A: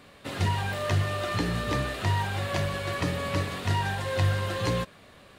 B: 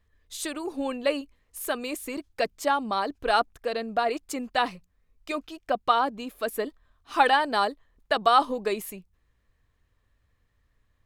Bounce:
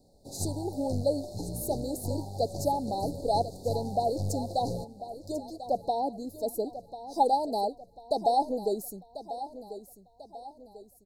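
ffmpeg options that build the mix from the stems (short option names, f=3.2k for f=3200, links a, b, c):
-filter_complex "[0:a]aeval=exprs='(tanh(7.94*val(0)+0.75)-tanh(0.75))/7.94':c=same,volume=-4dB,asplit=2[a][b];[b]volume=-18.5dB[c];[1:a]adynamicequalizer=threshold=0.0158:dfrequency=1800:dqfactor=0.7:tfrequency=1800:tqfactor=0.7:attack=5:release=100:ratio=0.375:range=2.5:mode=cutabove:tftype=highshelf,volume=-1.5dB,asplit=2[d][e];[e]volume=-13dB[f];[c][f]amix=inputs=2:normalize=0,aecho=0:1:1043|2086|3129|4172|5215|6258:1|0.43|0.185|0.0795|0.0342|0.0147[g];[a][d][g]amix=inputs=3:normalize=0,asuperstop=centerf=1900:order=20:qfactor=0.58"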